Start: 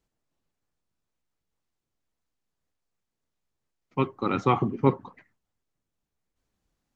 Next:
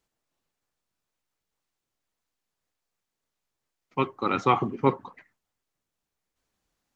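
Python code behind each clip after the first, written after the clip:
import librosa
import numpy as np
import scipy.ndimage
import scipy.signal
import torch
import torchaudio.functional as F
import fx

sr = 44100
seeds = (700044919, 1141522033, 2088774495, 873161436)

y = fx.low_shelf(x, sr, hz=360.0, db=-9.0)
y = F.gain(torch.from_numpy(y), 3.5).numpy()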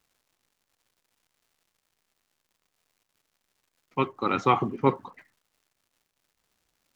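y = fx.dmg_crackle(x, sr, seeds[0], per_s=250.0, level_db=-57.0)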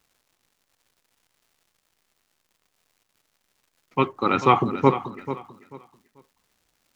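y = fx.echo_feedback(x, sr, ms=439, feedback_pct=24, wet_db=-12.5)
y = F.gain(torch.from_numpy(y), 4.5).numpy()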